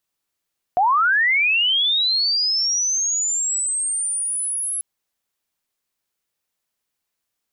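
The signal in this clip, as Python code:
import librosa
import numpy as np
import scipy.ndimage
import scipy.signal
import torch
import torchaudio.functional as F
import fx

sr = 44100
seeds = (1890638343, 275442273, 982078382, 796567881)

y = fx.chirp(sr, length_s=4.04, from_hz=690.0, to_hz=11000.0, law='linear', from_db=-13.5, to_db=-22.0)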